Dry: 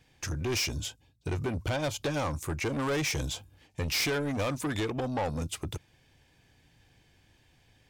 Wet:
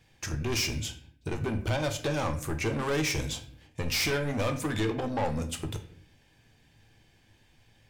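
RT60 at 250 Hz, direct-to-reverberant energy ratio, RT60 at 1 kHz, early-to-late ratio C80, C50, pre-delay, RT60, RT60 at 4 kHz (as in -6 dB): 0.85 s, 5.5 dB, 0.50 s, 15.0 dB, 11.5 dB, 5 ms, 0.60 s, 0.40 s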